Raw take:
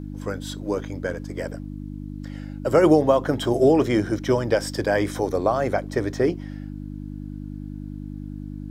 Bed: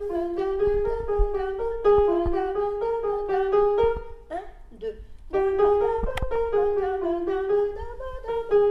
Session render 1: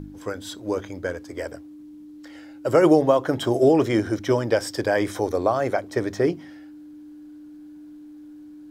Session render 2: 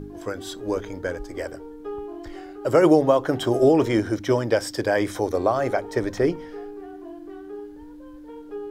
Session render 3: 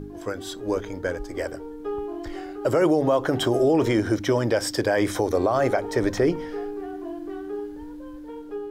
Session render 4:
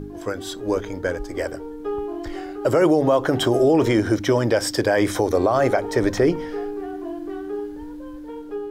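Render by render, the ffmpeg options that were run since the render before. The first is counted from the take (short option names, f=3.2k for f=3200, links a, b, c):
-af "bandreject=f=50:t=h:w=4,bandreject=f=100:t=h:w=4,bandreject=f=150:t=h:w=4,bandreject=f=200:t=h:w=4,bandreject=f=250:t=h:w=4"
-filter_complex "[1:a]volume=-15dB[a];[0:a][a]amix=inputs=2:normalize=0"
-af "dynaudnorm=f=610:g=5:m=6dB,alimiter=limit=-12dB:level=0:latency=1:release=80"
-af "volume=3dB"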